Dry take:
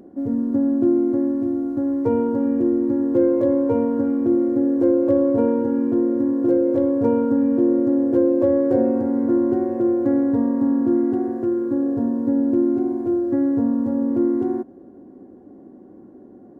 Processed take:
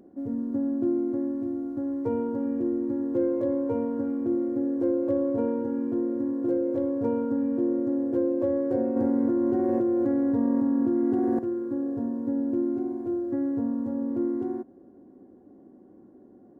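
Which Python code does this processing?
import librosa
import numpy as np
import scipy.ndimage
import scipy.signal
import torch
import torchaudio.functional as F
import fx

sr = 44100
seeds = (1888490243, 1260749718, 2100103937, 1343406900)

y = fx.env_flatten(x, sr, amount_pct=100, at=(8.96, 11.39))
y = y * librosa.db_to_amplitude(-8.0)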